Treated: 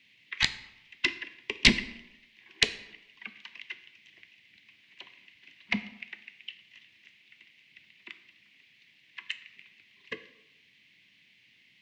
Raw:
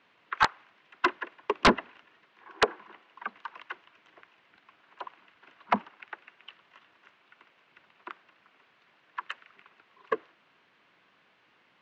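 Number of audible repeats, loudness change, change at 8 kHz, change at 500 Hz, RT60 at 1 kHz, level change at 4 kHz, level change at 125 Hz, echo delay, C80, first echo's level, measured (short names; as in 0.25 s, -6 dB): none, +0.5 dB, +8.0 dB, -12.0 dB, 0.85 s, +7.5 dB, +2.0 dB, none, 16.0 dB, none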